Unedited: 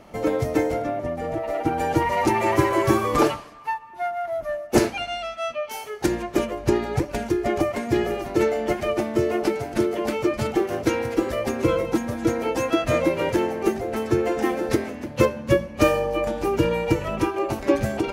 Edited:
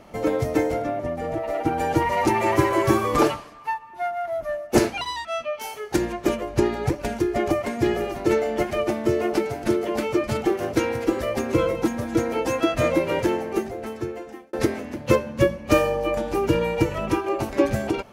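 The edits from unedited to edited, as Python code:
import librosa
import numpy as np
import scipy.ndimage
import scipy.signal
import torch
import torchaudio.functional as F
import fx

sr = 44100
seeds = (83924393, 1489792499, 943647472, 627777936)

y = fx.edit(x, sr, fx.speed_span(start_s=5.01, length_s=0.34, speed=1.41),
    fx.fade_out_span(start_s=13.32, length_s=1.31), tone=tone)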